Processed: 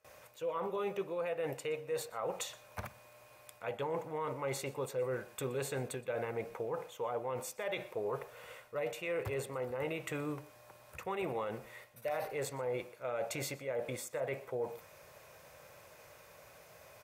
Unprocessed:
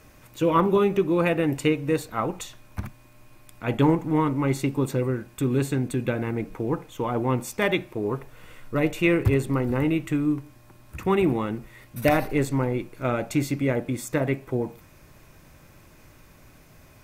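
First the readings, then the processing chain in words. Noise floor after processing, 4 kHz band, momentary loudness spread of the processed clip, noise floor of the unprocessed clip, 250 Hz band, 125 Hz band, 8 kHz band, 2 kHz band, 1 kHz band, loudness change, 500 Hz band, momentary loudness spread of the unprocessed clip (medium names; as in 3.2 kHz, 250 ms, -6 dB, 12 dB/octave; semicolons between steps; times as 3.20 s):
-59 dBFS, -9.5 dB, 19 LU, -53 dBFS, -22.5 dB, -20.0 dB, -6.0 dB, -12.5 dB, -12.0 dB, -14.0 dB, -10.5 dB, 10 LU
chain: gate with hold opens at -44 dBFS; high-pass 77 Hz; resonant low shelf 390 Hz -9 dB, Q 3; reverse; compression 16:1, threshold -29 dBFS, peak gain reduction 17.5 dB; reverse; peak limiter -25.5 dBFS, peak gain reduction 8 dB; on a send: delay 121 ms -21.5 dB; on the sum: trim -2.5 dB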